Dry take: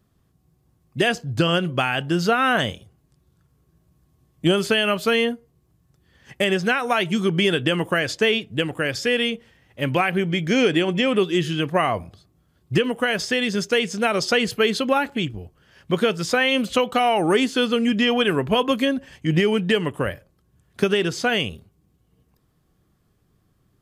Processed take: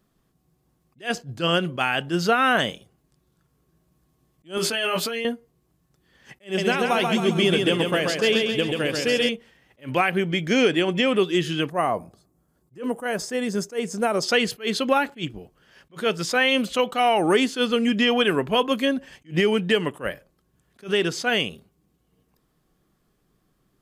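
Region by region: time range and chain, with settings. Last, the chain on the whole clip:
4.57–5.25 doubler 17 ms -3 dB + negative-ratio compressor -24 dBFS + HPF 240 Hz 6 dB/oct
6.44–9.29 bell 1600 Hz -6 dB 0.99 oct + feedback echo 0.135 s, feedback 54%, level -4 dB
11.7–14.23 de-esser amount 25% + EQ curve 910 Hz 0 dB, 3300 Hz -13 dB, 7800 Hz +1 dB
whole clip: bell 89 Hz -15 dB 0.86 oct; attack slew limiter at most 270 dB/s

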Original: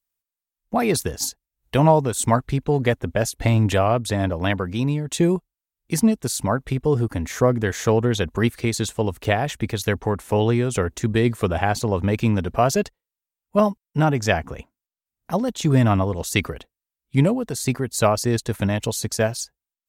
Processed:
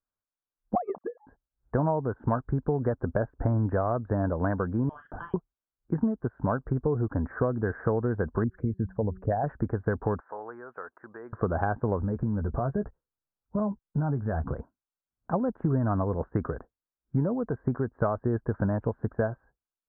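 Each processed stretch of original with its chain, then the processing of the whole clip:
0.75–1.27 sine-wave speech + transient shaper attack +11 dB, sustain -4 dB + fixed phaser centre 410 Hz, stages 6
4.89–5.34 inverted band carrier 3400 Hz + doubler 42 ms -11 dB
8.44–9.44 formant sharpening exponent 2 + bell 370 Hz -10.5 dB 0.57 oct + de-hum 188.3 Hz, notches 2
10.2–11.33 HPF 1200 Hz + tilt -2 dB/oct + compressor 1.5:1, threshold -42 dBFS
12–14.53 low shelf 200 Hz +11 dB + compressor 3:1, threshold -26 dBFS + doubler 14 ms -10 dB
whole clip: Chebyshev low-pass 1600 Hz, order 6; compressor, threshold -23 dBFS

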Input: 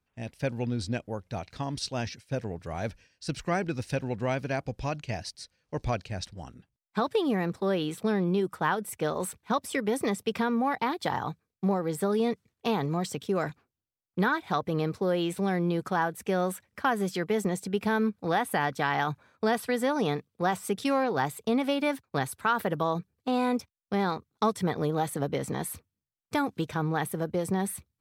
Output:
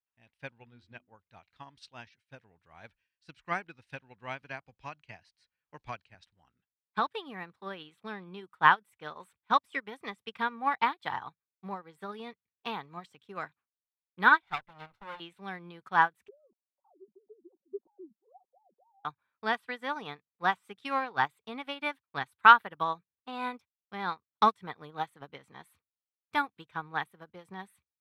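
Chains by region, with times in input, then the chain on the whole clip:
0.58–1.15 LPF 6700 Hz + high shelf 4600 Hz -6.5 dB + notches 50/100/150/200/250/300/350 Hz
4.42–6.15 notch 3600 Hz, Q 15 + three-band squash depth 40%
14.43–15.2 minimum comb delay 1.4 ms + decimation joined by straight lines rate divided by 2×
16.28–19.05 sine-wave speech + Gaussian blur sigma 17 samples + comb 5.4 ms, depth 48%
whole clip: band shelf 1800 Hz +11.5 dB 2.5 oct; upward expander 2.5:1, over -32 dBFS

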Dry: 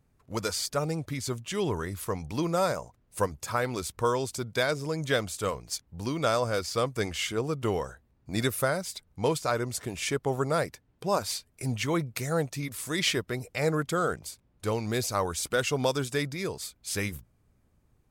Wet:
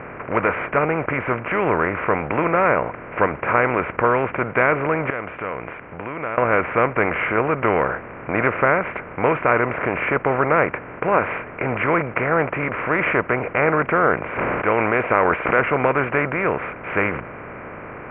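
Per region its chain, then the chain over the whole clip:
5.1–6.38 ladder low-pass 4000 Hz, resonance 55% + compressor 3:1, threshold -54 dBFS
14.3–15.59 tone controls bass -9 dB, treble +8 dB + sustainer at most 21 dB/s
whole clip: per-bin compression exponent 0.4; steep low-pass 2400 Hz 72 dB/oct; tilt +2 dB/oct; gain +5.5 dB

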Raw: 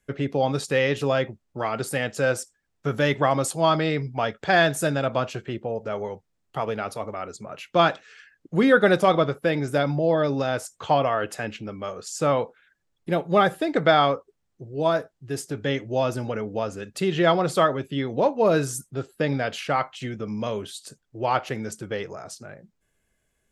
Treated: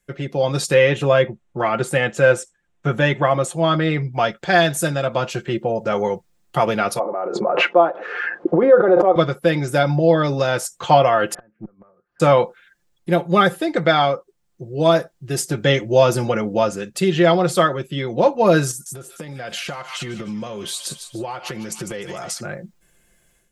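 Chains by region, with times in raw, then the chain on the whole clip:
0.74–4.14 LPF 6400 Hz + bell 4900 Hz -12 dB 0.62 oct
6.99–9.16 Butterworth band-pass 590 Hz, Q 0.87 + backwards sustainer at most 31 dB/s
11.34–12.2 steep low-pass 1600 Hz + flipped gate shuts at -28 dBFS, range -30 dB + tube stage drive 34 dB, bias 0.45
18.71–22.41 thin delay 0.149 s, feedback 49%, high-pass 2000 Hz, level -10 dB + compressor 10:1, threshold -37 dBFS
whole clip: high shelf 5200 Hz +5 dB; comb 5.7 ms, depth 58%; AGC; gain -1 dB

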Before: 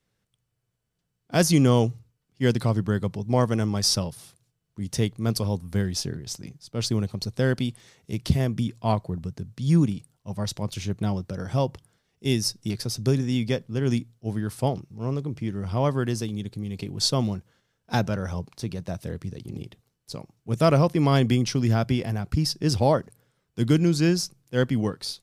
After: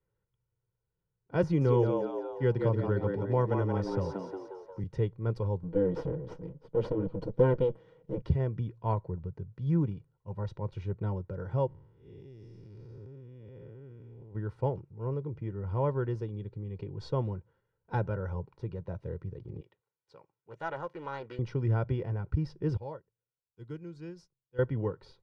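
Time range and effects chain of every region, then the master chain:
1.43–4.84 frequency-shifting echo 0.178 s, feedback 41%, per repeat +92 Hz, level -5 dB + three-band squash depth 40%
5.63–8.22 minimum comb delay 6.3 ms + small resonant body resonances 230/480/3100 Hz, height 13 dB, ringing for 20 ms
11.67–14.35 time blur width 0.297 s + compressor, threshold -39 dBFS
19.61–21.39 HPF 1400 Hz 6 dB/oct + Doppler distortion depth 0.36 ms
22.77–24.59 pre-emphasis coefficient 0.8 + upward expander, over -52 dBFS
whole clip: LPF 1300 Hz 12 dB/oct; notch 610 Hz, Q 12; comb 2.1 ms, depth 67%; gain -6.5 dB

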